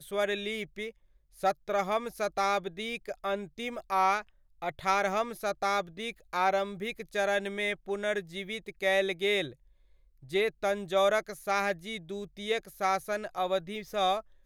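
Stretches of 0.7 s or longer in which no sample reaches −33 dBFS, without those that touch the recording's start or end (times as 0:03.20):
0:09.47–0:10.33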